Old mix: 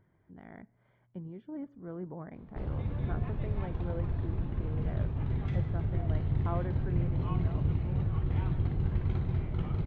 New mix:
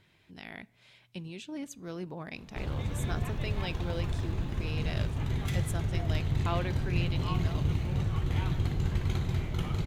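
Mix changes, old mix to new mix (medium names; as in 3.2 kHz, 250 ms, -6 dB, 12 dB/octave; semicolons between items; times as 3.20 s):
speech: remove Savitzky-Golay filter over 41 samples; master: remove tape spacing loss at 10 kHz 41 dB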